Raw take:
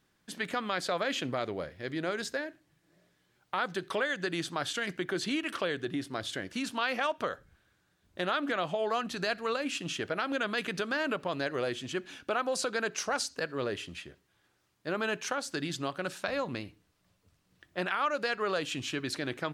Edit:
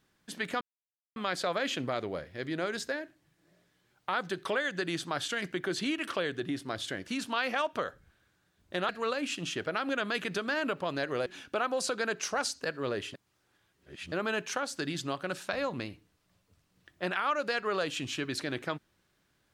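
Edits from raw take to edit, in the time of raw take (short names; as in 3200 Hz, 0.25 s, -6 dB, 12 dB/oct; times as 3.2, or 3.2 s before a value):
0.61 insert silence 0.55 s
8.34–9.32 cut
11.69–12.01 cut
13.89–14.87 reverse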